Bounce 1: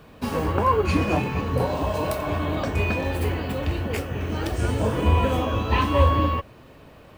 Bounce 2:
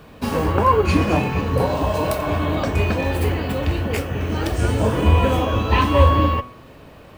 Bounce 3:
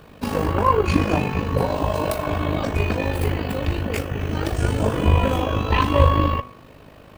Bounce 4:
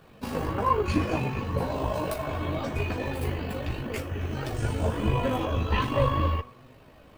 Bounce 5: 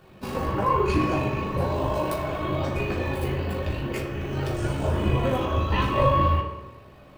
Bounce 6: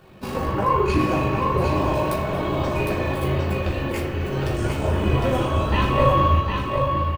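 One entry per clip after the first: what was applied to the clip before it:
de-hum 123.9 Hz, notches 29; trim +4.5 dB
AM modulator 51 Hz, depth 50%; trim +1 dB
chorus voices 4, 0.69 Hz, delay 12 ms, depth 4.4 ms; trim -4 dB
reverberation RT60 1.0 s, pre-delay 3 ms, DRR 0.5 dB
delay 757 ms -4.5 dB; trim +2.5 dB

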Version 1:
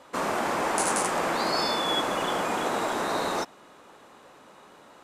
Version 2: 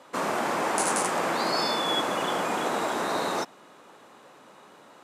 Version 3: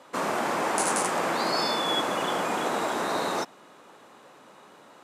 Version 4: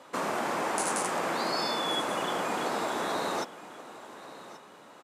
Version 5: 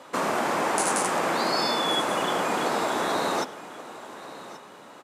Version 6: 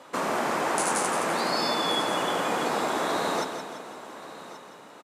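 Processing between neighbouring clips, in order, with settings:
high-pass 110 Hz 24 dB/octave
no audible change
compression 1.5:1, threshold -33 dBFS, peak gain reduction 4.5 dB; delay 1131 ms -16 dB
reverberation RT60 0.85 s, pre-delay 67 ms, DRR 19 dB; trim +5 dB
feedback delay 170 ms, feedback 49%, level -8 dB; trim -2 dB

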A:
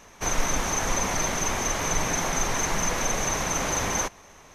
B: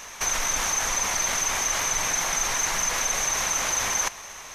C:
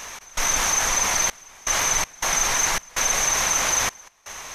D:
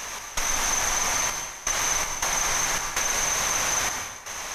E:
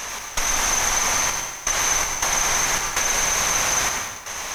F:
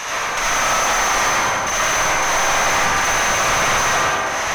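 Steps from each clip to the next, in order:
tone controls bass -11 dB, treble +2 dB; in parallel at +1.5 dB: compressor with a negative ratio -33 dBFS, ratio -0.5; on the sum: peaking EQ 370 Hz -10 dB 2.4 oct
trance gate "x.xxxxx..xx.xx" 81 bpm -24 dB; trim +4 dB
compression, threshold -25 dBFS, peak gain reduction 8 dB; plate-style reverb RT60 1.1 s, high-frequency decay 0.85×, pre-delay 85 ms, DRR 3 dB; trim +2 dB
bit-crushed delay 100 ms, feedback 35%, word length 7-bit, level -9 dB; trim +3.5 dB
wind noise 120 Hz -36 dBFS; algorithmic reverb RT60 1.7 s, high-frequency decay 0.25×, pre-delay 30 ms, DRR -7 dB; overdrive pedal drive 21 dB, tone 2.2 kHz, clips at -0.5 dBFS; trim -6 dB

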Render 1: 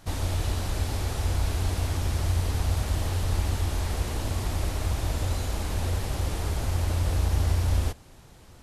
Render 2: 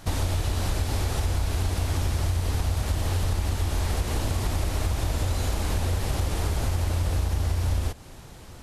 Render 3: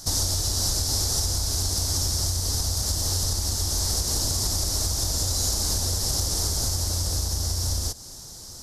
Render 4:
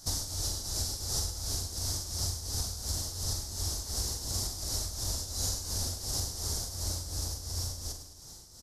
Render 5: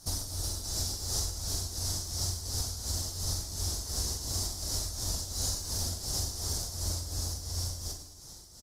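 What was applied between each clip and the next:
compression, threshold -28 dBFS, peak gain reduction 9 dB; trim +6.5 dB
resonant high shelf 3.7 kHz +13 dB, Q 3; trim -3 dB
tremolo triangle 2.8 Hz, depth 80%; doubling 43 ms -7.5 dB; feedback delay 106 ms, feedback 55%, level -11.5 dB; trim -6.5 dB
doubling 46 ms -12 dB; Opus 32 kbps 48 kHz

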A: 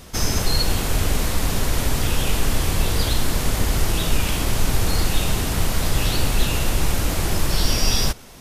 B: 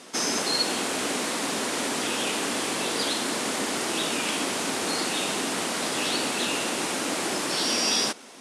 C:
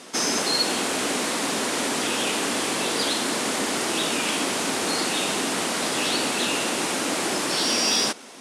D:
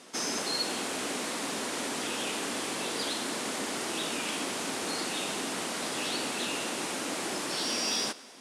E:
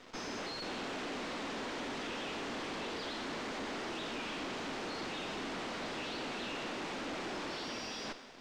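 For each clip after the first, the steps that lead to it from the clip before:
Chebyshev band-pass 250–9600 Hz, order 3
saturation -13.5 dBFS, distortion -29 dB; trim +3 dB
thinning echo 104 ms, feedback 63%, level -21 dB; trim -8.5 dB
valve stage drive 40 dB, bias 0.8; bit crusher 9-bit; distance through air 170 m; trim +4.5 dB

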